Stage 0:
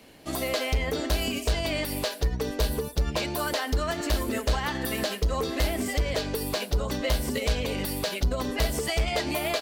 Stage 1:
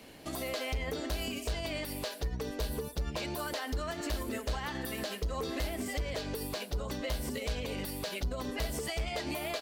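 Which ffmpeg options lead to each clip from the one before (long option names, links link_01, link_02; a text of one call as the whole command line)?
ffmpeg -i in.wav -af "alimiter=level_in=3dB:limit=-24dB:level=0:latency=1:release=376,volume=-3dB" out.wav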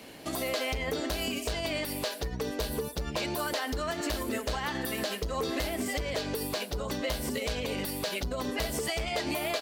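ffmpeg -i in.wav -af "lowshelf=frequency=79:gain=-10,volume=5dB" out.wav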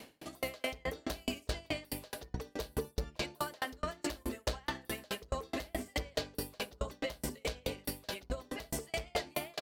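ffmpeg -i in.wav -filter_complex "[0:a]asplit=2[link_01][link_02];[link_02]adelay=62,lowpass=frequency=820:poles=1,volume=-7dB,asplit=2[link_03][link_04];[link_04]adelay=62,lowpass=frequency=820:poles=1,volume=0.41,asplit=2[link_05][link_06];[link_06]adelay=62,lowpass=frequency=820:poles=1,volume=0.41,asplit=2[link_07][link_08];[link_08]adelay=62,lowpass=frequency=820:poles=1,volume=0.41,asplit=2[link_09][link_10];[link_10]adelay=62,lowpass=frequency=820:poles=1,volume=0.41[link_11];[link_03][link_05][link_07][link_09][link_11]amix=inputs=5:normalize=0[link_12];[link_01][link_12]amix=inputs=2:normalize=0,aeval=exprs='val(0)*pow(10,-37*if(lt(mod(4.7*n/s,1),2*abs(4.7)/1000),1-mod(4.7*n/s,1)/(2*abs(4.7)/1000),(mod(4.7*n/s,1)-2*abs(4.7)/1000)/(1-2*abs(4.7)/1000))/20)':channel_layout=same,volume=1.5dB" out.wav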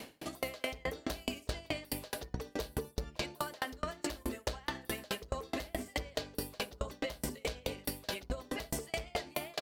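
ffmpeg -i in.wav -af "acompressor=threshold=-37dB:ratio=6,volume=4.5dB" out.wav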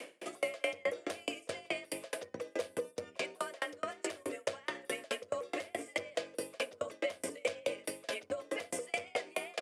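ffmpeg -i in.wav -af "afreqshift=37,highpass=330,equalizer=frequency=530:width_type=q:width=4:gain=8,equalizer=frequency=850:width_type=q:width=4:gain=-7,equalizer=frequency=2300:width_type=q:width=4:gain=5,equalizer=frequency=4200:width_type=q:width=4:gain=-9,equalizer=frequency=5900:width_type=q:width=4:gain=-3,equalizer=frequency=9300:width_type=q:width=4:gain=4,lowpass=frequency=10000:width=0.5412,lowpass=frequency=10000:width=1.3066" out.wav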